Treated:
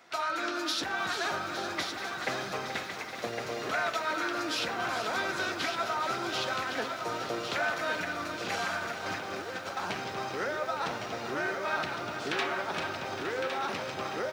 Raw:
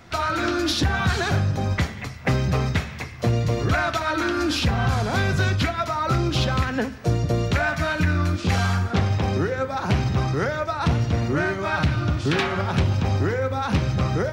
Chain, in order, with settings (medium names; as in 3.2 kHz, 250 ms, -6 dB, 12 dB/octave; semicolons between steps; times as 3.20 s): high-pass 430 Hz 12 dB/octave; delay 1109 ms -6.5 dB; 8.79–9.77 s: compressor with a negative ratio -31 dBFS, ratio -0.5; bit-crushed delay 431 ms, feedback 80%, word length 8-bit, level -10 dB; trim -7 dB